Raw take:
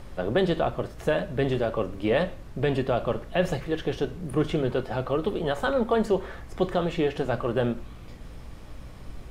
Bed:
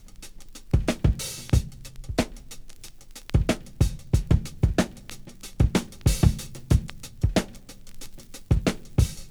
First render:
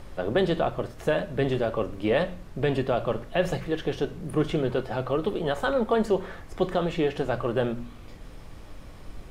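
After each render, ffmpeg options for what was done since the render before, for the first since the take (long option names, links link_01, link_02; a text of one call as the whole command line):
ffmpeg -i in.wav -af "bandreject=frequency=60:width_type=h:width=4,bandreject=frequency=120:width_type=h:width=4,bandreject=frequency=180:width_type=h:width=4,bandreject=frequency=240:width_type=h:width=4" out.wav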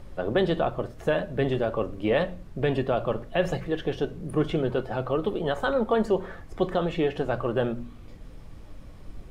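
ffmpeg -i in.wav -af "afftdn=noise_reduction=6:noise_floor=-44" out.wav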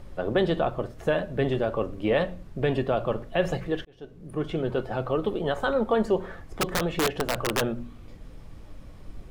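ffmpeg -i in.wav -filter_complex "[0:a]asplit=3[link_01][link_02][link_03];[link_01]afade=type=out:start_time=6.6:duration=0.02[link_04];[link_02]aeval=exprs='(mod(7.5*val(0)+1,2)-1)/7.5':channel_layout=same,afade=type=in:start_time=6.6:duration=0.02,afade=type=out:start_time=7.6:duration=0.02[link_05];[link_03]afade=type=in:start_time=7.6:duration=0.02[link_06];[link_04][link_05][link_06]amix=inputs=3:normalize=0,asplit=2[link_07][link_08];[link_07]atrim=end=3.85,asetpts=PTS-STARTPTS,afade=type=out:start_time=3.846:duration=0.004:curve=hsin[link_09];[link_08]atrim=start=3.85,asetpts=PTS-STARTPTS,afade=type=in:duration=0.97[link_10];[link_09][link_10]concat=n=2:v=0:a=1" out.wav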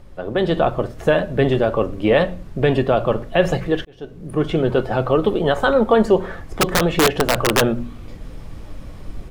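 ffmpeg -i in.wav -af "dynaudnorm=framelen=320:gausssize=3:maxgain=10dB" out.wav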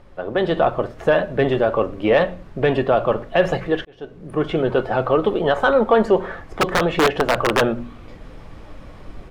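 ffmpeg -i in.wav -filter_complex "[0:a]asplit=2[link_01][link_02];[link_02]highpass=frequency=720:poles=1,volume=8dB,asoftclip=type=tanh:threshold=-2.5dB[link_03];[link_01][link_03]amix=inputs=2:normalize=0,lowpass=frequency=1900:poles=1,volume=-6dB" out.wav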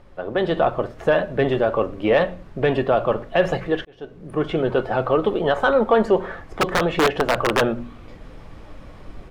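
ffmpeg -i in.wav -af "volume=-1.5dB" out.wav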